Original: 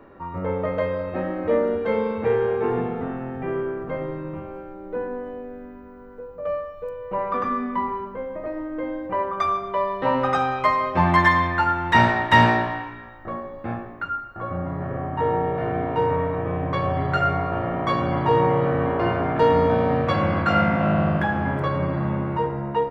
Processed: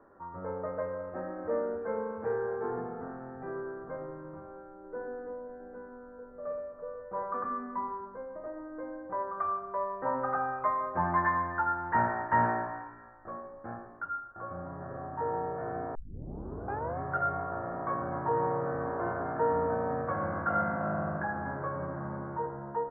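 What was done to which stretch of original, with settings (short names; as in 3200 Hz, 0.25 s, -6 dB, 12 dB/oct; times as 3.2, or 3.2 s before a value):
4.79–7.23 tapped delay 54/117/336/543/807 ms -6.5/-11.5/-7/-13.5/-6 dB
15.95 tape start 1.05 s
whole clip: elliptic low-pass 1600 Hz, stop band 70 dB; low shelf 440 Hz -8 dB; gain -7 dB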